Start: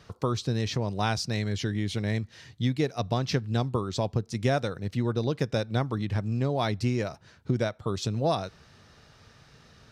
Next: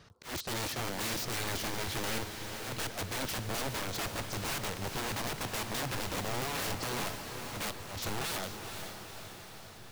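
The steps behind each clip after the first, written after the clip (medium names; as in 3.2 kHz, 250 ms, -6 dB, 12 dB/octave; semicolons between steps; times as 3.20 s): integer overflow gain 28 dB; slow attack 143 ms; echo that smears into a reverb 474 ms, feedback 61%, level -7 dB; trim -3 dB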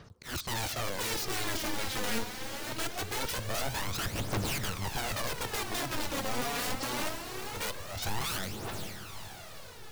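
phaser 0.23 Hz, delay 4.3 ms, feedback 56%; reverberation RT60 0.75 s, pre-delay 62 ms, DRR 26 dB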